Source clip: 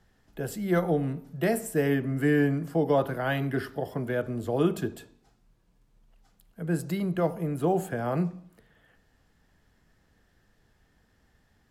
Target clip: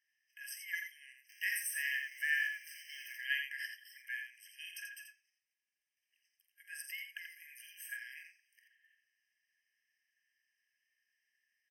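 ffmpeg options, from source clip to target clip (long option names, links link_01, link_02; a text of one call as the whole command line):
ffmpeg -i in.wav -filter_complex "[0:a]asettb=1/sr,asplit=3[link_01][link_02][link_03];[link_01]atrim=end=1.294[link_04];[link_02]atrim=start=1.29:end=3.17,asetpts=PTS-STARTPTS,afade=type=in:duration=0.004:curve=qsin,afade=type=out:start_time=1.876:duration=0.004:curve=qsin,aeval=exprs='val(0)+0.5*0.00944*sgn(val(0))':channel_layout=same[link_05];[link_03]atrim=start=3.166[link_06];[link_04][link_05]acrossfade=duration=0.004:curve1=hsin:curve2=qsin[link_07];[link_07][link_06]acrossfade=duration=0.004:curve1=qsin:curve2=hsin,agate=range=-9dB:threshold=-60dB:ratio=16:detection=peak,aecho=1:1:46.65|84.55:0.282|0.501,afftfilt=real='re*eq(mod(floor(b*sr/1024/1600),2),1)':imag='im*eq(mod(floor(b*sr/1024/1600),2),1)':win_size=1024:overlap=0.75" out.wav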